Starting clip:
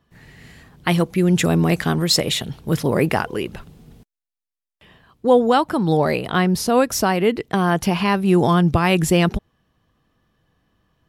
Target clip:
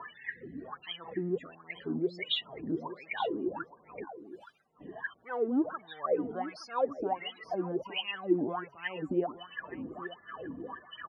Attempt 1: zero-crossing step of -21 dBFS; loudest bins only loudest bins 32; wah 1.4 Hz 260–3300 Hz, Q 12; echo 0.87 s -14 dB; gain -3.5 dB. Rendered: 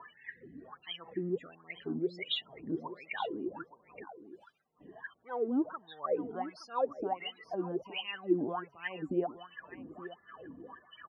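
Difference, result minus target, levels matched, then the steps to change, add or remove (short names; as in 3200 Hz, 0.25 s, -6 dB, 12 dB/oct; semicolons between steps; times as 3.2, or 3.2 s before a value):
zero-crossing step: distortion -5 dB
change: zero-crossing step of -13.5 dBFS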